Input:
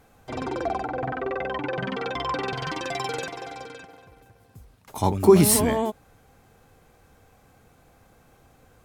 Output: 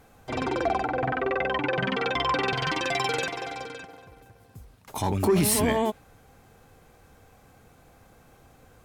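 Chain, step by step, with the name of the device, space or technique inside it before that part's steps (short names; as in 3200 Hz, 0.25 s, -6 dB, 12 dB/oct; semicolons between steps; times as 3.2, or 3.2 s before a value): soft clipper into limiter (soft clip -8.5 dBFS, distortion -17 dB; limiter -17 dBFS, peak gain reduction 8 dB); dynamic EQ 2500 Hz, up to +5 dB, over -46 dBFS, Q 1; gain +1.5 dB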